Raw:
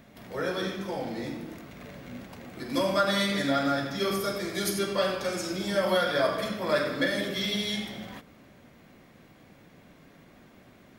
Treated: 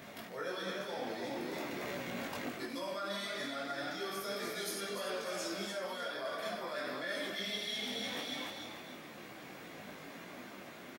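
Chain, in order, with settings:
brickwall limiter −20.5 dBFS, peak gain reduction 7 dB
high-pass filter 440 Hz 6 dB per octave
on a send: echo with shifted repeats 297 ms, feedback 37%, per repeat +42 Hz, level −7 dB
on the sum: reversed playback
downward compressor 16 to 1, threshold −44 dBFS, peak gain reduction 18.5 dB
reversed playback
micro pitch shift up and down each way 14 cents
level +11.5 dB

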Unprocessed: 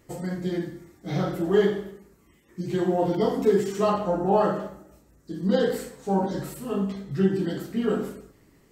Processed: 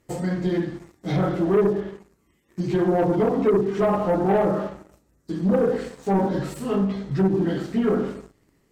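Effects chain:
treble cut that deepens with the level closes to 700 Hz, closed at −17.5 dBFS
leveller curve on the samples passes 2
level −2 dB

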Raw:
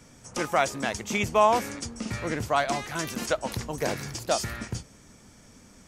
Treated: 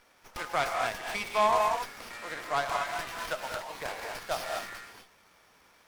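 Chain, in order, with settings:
Chebyshev high-pass filter 840 Hz, order 2
reverb whose tail is shaped and stops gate 270 ms rising, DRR 1 dB
windowed peak hold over 5 samples
level −3.5 dB

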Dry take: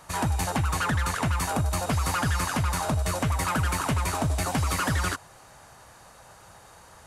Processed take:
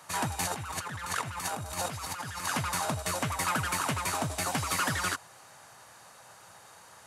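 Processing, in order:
tilt shelving filter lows −3.5 dB, about 680 Hz
0:00.43–0:02.46: compressor whose output falls as the input rises −30 dBFS, ratio −0.5
high-pass filter 94 Hz 24 dB per octave
level −3.5 dB

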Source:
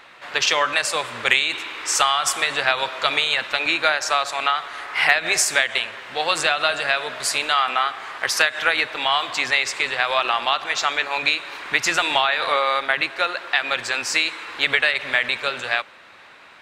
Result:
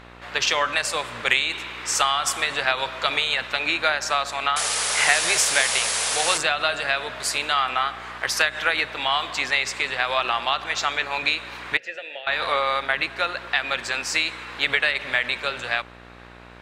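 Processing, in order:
hum with harmonics 60 Hz, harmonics 31, −44 dBFS −3 dB per octave
0:04.56–0:06.38: sound drawn into the spectrogram noise 410–11,000 Hz −22 dBFS
0:11.77–0:12.27: formant filter e
level −2.5 dB

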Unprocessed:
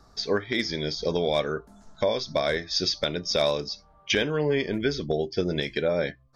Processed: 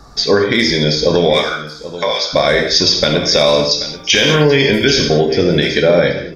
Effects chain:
0:01.33–0:02.33: high-pass filter 1,000 Hz 12 dB per octave
0:03.71–0:04.98: high-shelf EQ 2,800 Hz +12 dB
single-tap delay 782 ms −16.5 dB
reverb whose tail is shaped and stops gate 250 ms falling, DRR 2.5 dB
boost into a limiter +15 dB
level −1 dB

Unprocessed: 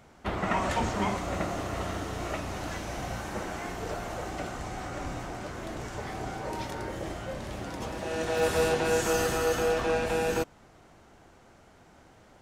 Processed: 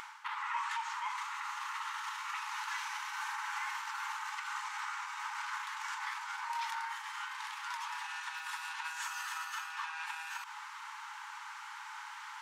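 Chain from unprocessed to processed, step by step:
high-shelf EQ 4,600 Hz −9 dB
reversed playback
downward compressor 6 to 1, threshold −42 dBFS, peak gain reduction 19 dB
reversed playback
brickwall limiter −41.5 dBFS, peak gain reduction 12.5 dB
upward compression, threshold −59 dBFS
linear-phase brick-wall high-pass 820 Hz
level +17 dB

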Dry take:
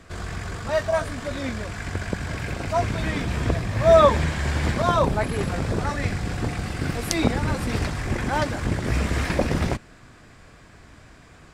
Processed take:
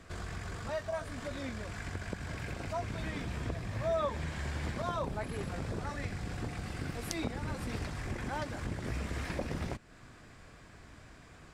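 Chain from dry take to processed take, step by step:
downward compressor 2 to 1, threshold −34 dBFS, peak gain reduction 13 dB
level −5.5 dB

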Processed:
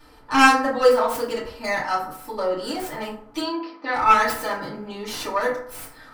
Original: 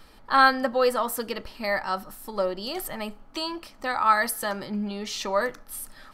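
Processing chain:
stylus tracing distortion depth 0.16 ms
0:03.40–0:03.94: Chebyshev band-pass filter 200–4,700 Hz, order 4
feedback delay network reverb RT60 0.62 s, low-frequency decay 0.8×, high-frequency decay 0.45×, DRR −8.5 dB
level −5.5 dB

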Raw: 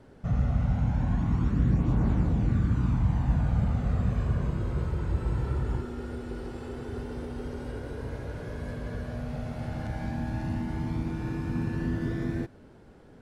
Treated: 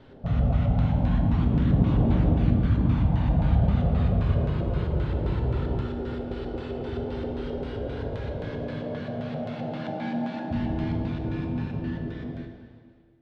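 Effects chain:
fade-out on the ending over 2.52 s
0:08.49–0:10.50: high-pass filter 86 Hz → 220 Hz 24 dB per octave
auto-filter low-pass square 3.8 Hz 650–3,500 Hz
convolution reverb RT60 1.8 s, pre-delay 4 ms, DRR 3 dB
level +1.5 dB

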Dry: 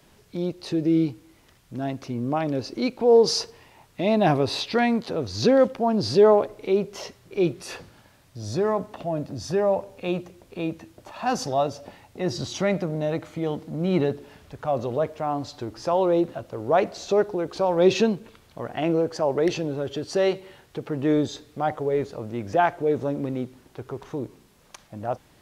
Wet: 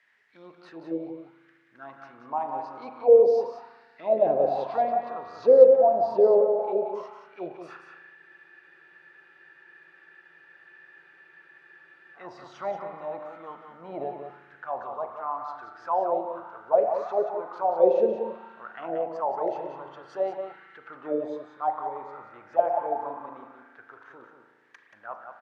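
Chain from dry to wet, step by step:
spring reverb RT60 2.4 s, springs 36 ms, chirp 70 ms, DRR 4.5 dB
envelope filter 510–1,900 Hz, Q 7.8, down, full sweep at −14.5 dBFS
on a send: single-tap delay 181 ms −7.5 dB
on the sum: frozen spectrum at 0:08.18, 3.97 s
level +6 dB

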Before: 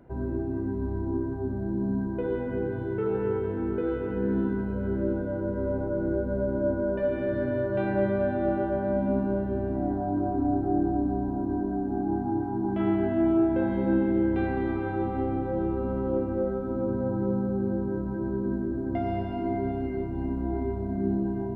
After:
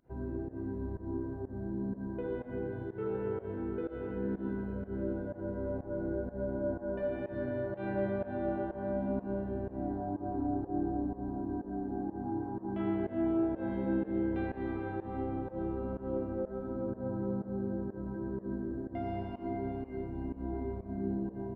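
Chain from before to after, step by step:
fake sidechain pumping 124 BPM, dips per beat 1, −24 dB, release 143 ms
echo with shifted repeats 83 ms, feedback 53%, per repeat +120 Hz, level −22 dB
level −7.5 dB

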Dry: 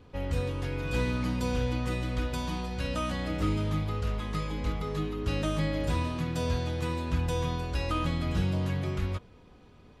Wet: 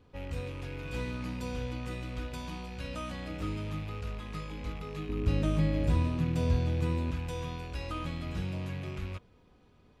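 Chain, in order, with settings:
loose part that buzzes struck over −35 dBFS, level −32 dBFS
0:05.09–0:07.11: low-shelf EQ 470 Hz +10.5 dB
level −7 dB

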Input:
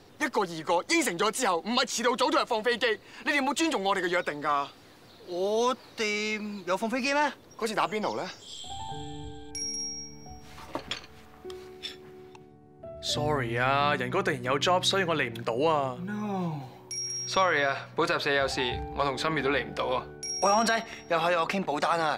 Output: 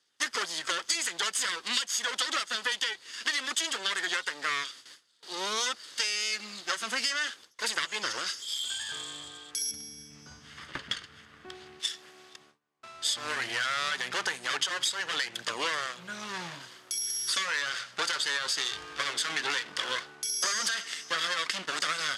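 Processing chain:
lower of the sound and its delayed copy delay 0.62 ms
0:09.71–0:11.80: bass and treble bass +14 dB, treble −13 dB
noise gate with hold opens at −43 dBFS
meter weighting curve ITU-R 468
downward compressor 12 to 1, threshold −26 dBFS, peak gain reduction 13 dB

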